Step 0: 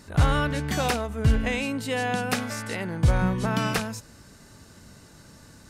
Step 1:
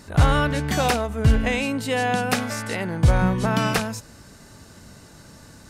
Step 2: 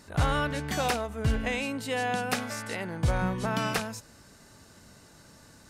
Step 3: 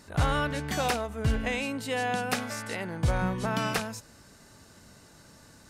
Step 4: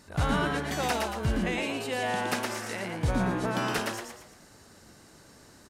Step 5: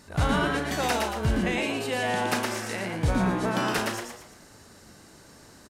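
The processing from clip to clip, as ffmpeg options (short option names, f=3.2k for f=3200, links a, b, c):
-af "equalizer=f=710:t=o:w=0.77:g=2,volume=3.5dB"
-af "lowshelf=f=260:g=-4.5,volume=-6dB"
-af anull
-filter_complex "[0:a]asplit=6[a][b][c][d][e][f];[b]adelay=115,afreqshift=130,volume=-3.5dB[g];[c]adelay=230,afreqshift=260,volume=-11.2dB[h];[d]adelay=345,afreqshift=390,volume=-19dB[i];[e]adelay=460,afreqshift=520,volume=-26.7dB[j];[f]adelay=575,afreqshift=650,volume=-34.5dB[k];[a][g][h][i][j][k]amix=inputs=6:normalize=0,volume=-2dB"
-filter_complex "[0:a]asplit=2[a][b];[b]adelay=37,volume=-10.5dB[c];[a][c]amix=inputs=2:normalize=0,volume=2.5dB"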